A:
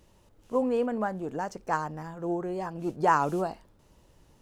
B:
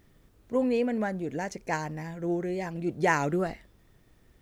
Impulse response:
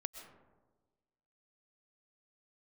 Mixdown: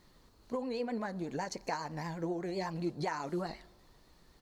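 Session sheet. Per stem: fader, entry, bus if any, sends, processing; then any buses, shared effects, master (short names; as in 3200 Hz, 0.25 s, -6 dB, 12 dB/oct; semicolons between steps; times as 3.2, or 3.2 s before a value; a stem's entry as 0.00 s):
-8.5 dB, 0.00 s, no send, compressor, threshold -27 dBFS, peak gain reduction 10 dB; endless flanger 3.2 ms -1.4 Hz
-4.0 dB, 0.3 ms, send -13.5 dB, fifteen-band EQ 100 Hz -9 dB, 1000 Hz +9 dB, 6300 Hz +4 dB; compressor 12:1, threshold -31 dBFS, peak gain reduction 17 dB; vibrato 7.9 Hz 79 cents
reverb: on, RT60 1.3 s, pre-delay 85 ms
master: bell 4300 Hz +14 dB 0.31 oct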